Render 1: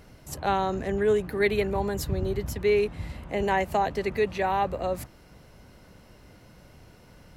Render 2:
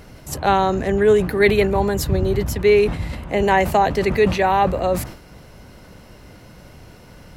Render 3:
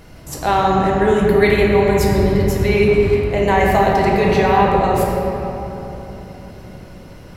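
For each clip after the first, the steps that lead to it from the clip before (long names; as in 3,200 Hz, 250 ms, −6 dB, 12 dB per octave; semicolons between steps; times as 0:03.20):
level that may fall only so fast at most 100 dB per second; level +8.5 dB
rectangular room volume 220 cubic metres, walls hard, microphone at 0.67 metres; level −1.5 dB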